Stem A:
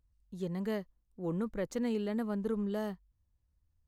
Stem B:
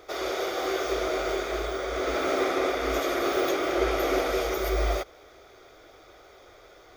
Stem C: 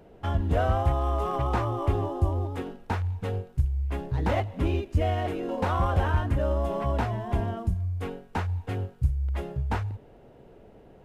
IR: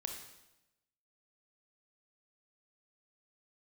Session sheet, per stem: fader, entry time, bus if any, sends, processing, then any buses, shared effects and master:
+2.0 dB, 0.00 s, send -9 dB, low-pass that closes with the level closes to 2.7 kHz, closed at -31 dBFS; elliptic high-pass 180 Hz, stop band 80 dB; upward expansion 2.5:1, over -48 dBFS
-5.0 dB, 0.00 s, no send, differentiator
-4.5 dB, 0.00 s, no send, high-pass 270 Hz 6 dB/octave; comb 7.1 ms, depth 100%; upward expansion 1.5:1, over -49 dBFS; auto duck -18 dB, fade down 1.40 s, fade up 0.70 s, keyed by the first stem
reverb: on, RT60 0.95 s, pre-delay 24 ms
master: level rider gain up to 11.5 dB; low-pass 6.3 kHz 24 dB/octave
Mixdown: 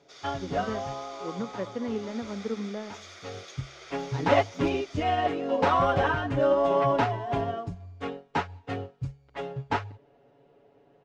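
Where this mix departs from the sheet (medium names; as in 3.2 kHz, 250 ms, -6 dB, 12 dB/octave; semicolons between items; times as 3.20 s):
stem C -4.5 dB -> +5.0 dB; master: missing level rider gain up to 11.5 dB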